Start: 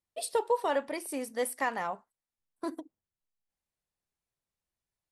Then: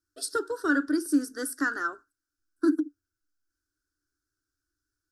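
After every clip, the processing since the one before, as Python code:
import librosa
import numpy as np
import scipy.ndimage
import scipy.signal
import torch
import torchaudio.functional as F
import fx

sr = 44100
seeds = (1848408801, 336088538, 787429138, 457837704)

y = fx.curve_eq(x, sr, hz=(110.0, 200.0, 290.0, 520.0, 890.0, 1500.0, 2200.0, 5200.0, 8000.0, 12000.0), db=(0, -28, 12, -16, -25, 12, -28, 2, -4, -6))
y = F.gain(torch.from_numpy(y), 7.5).numpy()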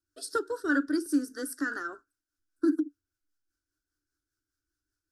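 y = fx.rotary(x, sr, hz=5.0)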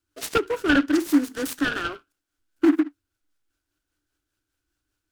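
y = fx.noise_mod_delay(x, sr, seeds[0], noise_hz=1300.0, depth_ms=0.054)
y = F.gain(torch.from_numpy(y), 7.5).numpy()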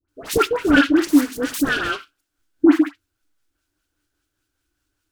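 y = fx.dispersion(x, sr, late='highs', ms=87.0, hz=1300.0)
y = F.gain(torch.from_numpy(y), 5.0).numpy()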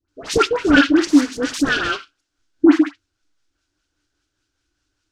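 y = fx.lowpass_res(x, sr, hz=5900.0, q=1.5)
y = F.gain(torch.from_numpy(y), 1.5).numpy()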